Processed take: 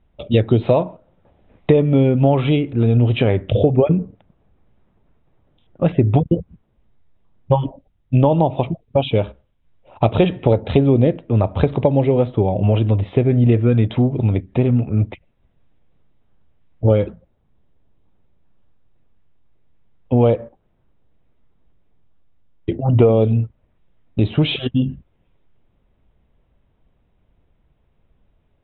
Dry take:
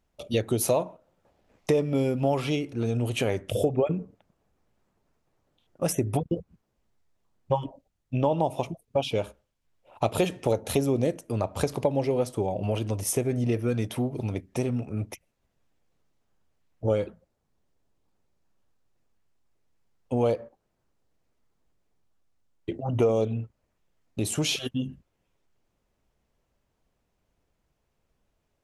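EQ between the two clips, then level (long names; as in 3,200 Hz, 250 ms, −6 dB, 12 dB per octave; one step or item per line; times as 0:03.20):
Chebyshev low-pass filter 3,800 Hz, order 8
low-shelf EQ 260 Hz +10.5 dB
+6.5 dB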